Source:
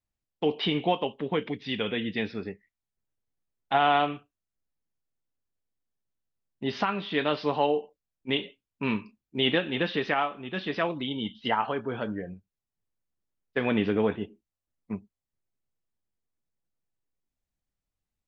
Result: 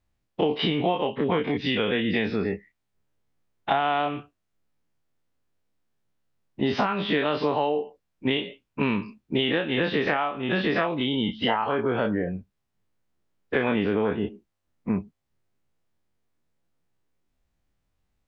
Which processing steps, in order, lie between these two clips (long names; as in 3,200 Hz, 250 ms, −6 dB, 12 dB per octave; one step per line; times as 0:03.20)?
every bin's largest magnitude spread in time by 60 ms
downward compressor, threshold −29 dBFS, peak gain reduction 12.5 dB
high-shelf EQ 4,800 Hz −11 dB
level +8.5 dB